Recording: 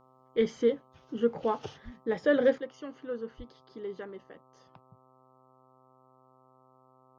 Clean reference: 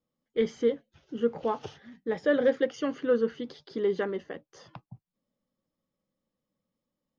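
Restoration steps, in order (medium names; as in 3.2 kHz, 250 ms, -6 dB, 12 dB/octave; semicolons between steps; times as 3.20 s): de-hum 129.6 Hz, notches 10; 1.84–1.96 s: high-pass 140 Hz 24 dB/octave; 2.58 s: gain correction +11.5 dB; 3.37–3.49 s: high-pass 140 Hz 24 dB/octave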